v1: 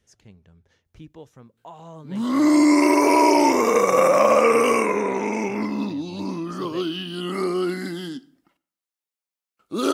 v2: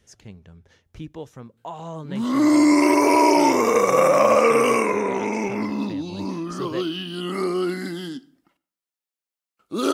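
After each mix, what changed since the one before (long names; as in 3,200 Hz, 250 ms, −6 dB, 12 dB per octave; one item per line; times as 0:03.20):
speech +7.0 dB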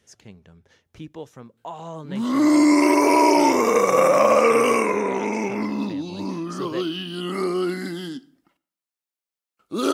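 speech: add high-pass filter 160 Hz 6 dB per octave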